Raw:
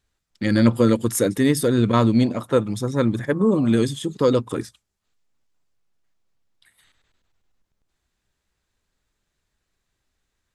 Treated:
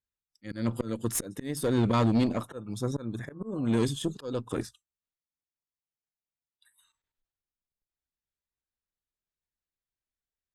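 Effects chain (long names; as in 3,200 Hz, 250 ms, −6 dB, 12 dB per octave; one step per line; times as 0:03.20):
volume swells 409 ms
tube saturation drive 17 dB, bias 0.45
noise reduction from a noise print of the clip's start 19 dB
level −2 dB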